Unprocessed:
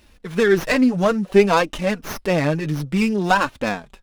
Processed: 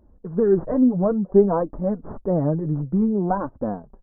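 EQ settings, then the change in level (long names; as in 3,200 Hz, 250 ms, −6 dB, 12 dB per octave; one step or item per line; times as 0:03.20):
Gaussian smoothing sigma 10 samples
0.0 dB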